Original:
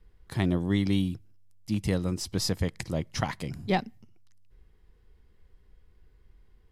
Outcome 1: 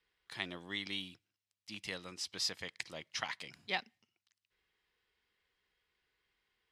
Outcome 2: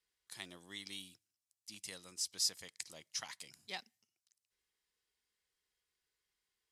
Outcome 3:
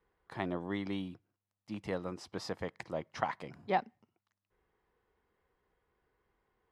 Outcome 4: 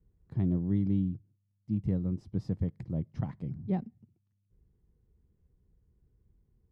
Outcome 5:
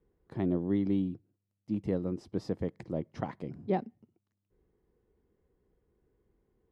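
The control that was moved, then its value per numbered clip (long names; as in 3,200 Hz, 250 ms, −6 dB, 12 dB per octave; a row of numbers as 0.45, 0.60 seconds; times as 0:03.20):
resonant band-pass, frequency: 3,000, 7,700, 930, 140, 360 Hertz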